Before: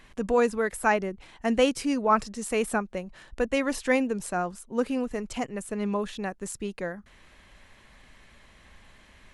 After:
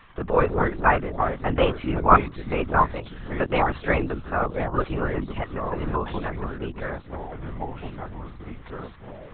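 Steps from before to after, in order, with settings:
parametric band 1,200 Hz +10.5 dB 0.65 octaves
delay with pitch and tempo change per echo 121 ms, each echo −4 semitones, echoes 3, each echo −6 dB
linear-prediction vocoder at 8 kHz whisper

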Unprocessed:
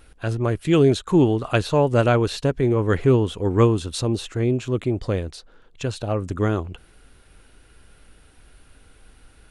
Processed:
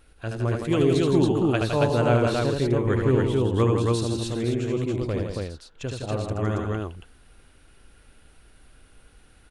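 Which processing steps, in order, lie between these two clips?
loudspeakers that aren't time-aligned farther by 26 metres −4 dB, 56 metres −6 dB, 95 metres −2 dB
level −6 dB

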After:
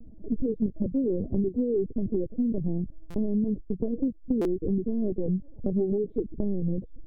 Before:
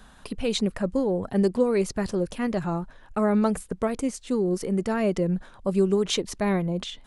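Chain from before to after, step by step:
camcorder AGC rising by 14 dB per second
inverse Chebyshev low-pass filter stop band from 1,100 Hz, stop band 50 dB
linear-prediction vocoder at 8 kHz pitch kept
downward compressor 6 to 1, threshold −30 dBFS, peak gain reduction 12 dB
buffer that repeats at 0:03.10/0:04.41, samples 256, times 6
0:05.10–0:05.98: highs frequency-modulated by the lows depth 0.21 ms
level +7 dB

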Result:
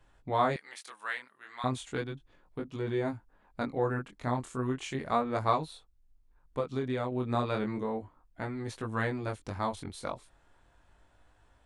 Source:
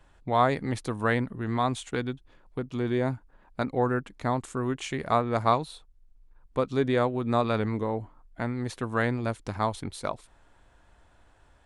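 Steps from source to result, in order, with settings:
chorus effect 0.34 Hz, delay 18.5 ms, depth 5.7 ms
0:00.56–0:01.64: high-pass filter 1,400 Hz 12 dB per octave
0:06.60–0:07.12: downward compressor, threshold −27 dBFS, peak gain reduction 5.5 dB
level −1.5 dB

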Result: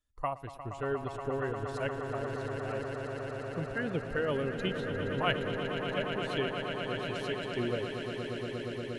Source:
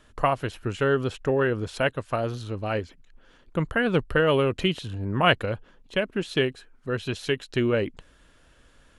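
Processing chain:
spectral dynamics exaggerated over time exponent 1.5
echo that builds up and dies away 118 ms, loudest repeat 8, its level −10 dB
level −9 dB

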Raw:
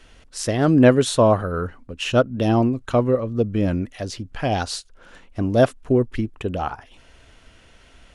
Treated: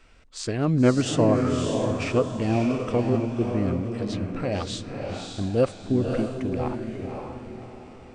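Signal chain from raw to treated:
feedback delay with all-pass diffusion 568 ms, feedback 41%, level −4 dB
formants moved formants −3 semitones
level −5.5 dB

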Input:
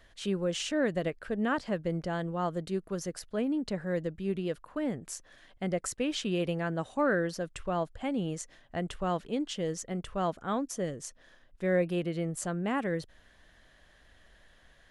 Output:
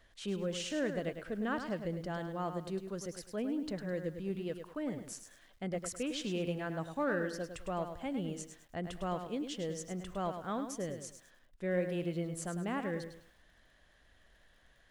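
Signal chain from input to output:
in parallel at −9 dB: soft clipping −26 dBFS, distortion −14 dB
on the sum: feedback echo at a low word length 104 ms, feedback 35%, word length 9 bits, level −8 dB
level −8 dB

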